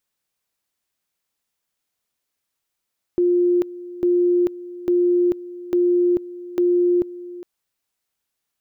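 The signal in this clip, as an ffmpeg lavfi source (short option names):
-f lavfi -i "aevalsrc='pow(10,(-14-17.5*gte(mod(t,0.85),0.44))/20)*sin(2*PI*353*t)':d=4.25:s=44100"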